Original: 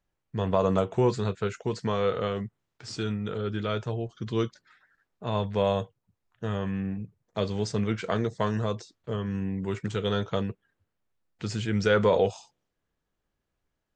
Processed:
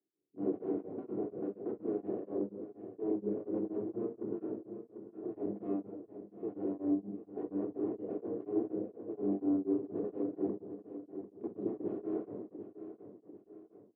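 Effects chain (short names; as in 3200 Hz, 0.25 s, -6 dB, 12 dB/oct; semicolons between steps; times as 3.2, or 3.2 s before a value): in parallel at -11 dB: wavefolder -20 dBFS; on the sum: formant shift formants +4 st; wrapped overs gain 22.5 dB; Butterworth band-pass 340 Hz, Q 1.6; air absorption 320 m; on a send: feedback echo 0.745 s, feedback 44%, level -11 dB; on the sum: shoebox room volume 2200 m³, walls furnished, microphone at 3.3 m; beating tremolo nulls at 4.2 Hz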